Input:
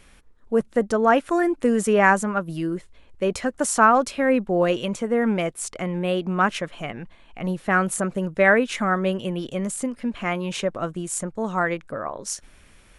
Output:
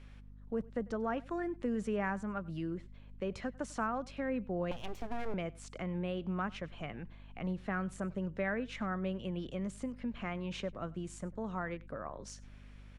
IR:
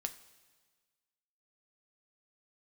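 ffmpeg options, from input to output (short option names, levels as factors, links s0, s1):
-filter_complex "[0:a]acrossover=split=180[s0][s1];[s1]acompressor=threshold=0.02:ratio=2[s2];[s0][s2]amix=inputs=2:normalize=0,lowpass=4700,asettb=1/sr,asplit=3[s3][s4][s5];[s3]atrim=end=4.714[s6];[s4]atrim=start=4.71:end=5.34,asetpts=PTS-STARTPTS,afade=t=in:d=0.004:c=qsin,afade=t=out:st=0.626:d=0.004:c=qsin,aeval=exprs='abs(val(0))':c=same[s7];[s5]atrim=start=5.336[s8];[s6][s7]acrossfade=d=0.004:c1=hsin:c2=qsin[s9];[s9][s8]acrossfade=d=0.004:c1=qsin:c2=hsin,aeval=exprs='val(0)+0.00631*(sin(2*PI*50*n/s)+sin(2*PI*2*50*n/s)/2+sin(2*PI*3*50*n/s)/3+sin(2*PI*4*50*n/s)/4+sin(2*PI*5*50*n/s)/5)':c=same,asplit=2[s10][s11];[s11]aecho=0:1:97:0.0708[s12];[s10][s12]amix=inputs=2:normalize=0,volume=0.398"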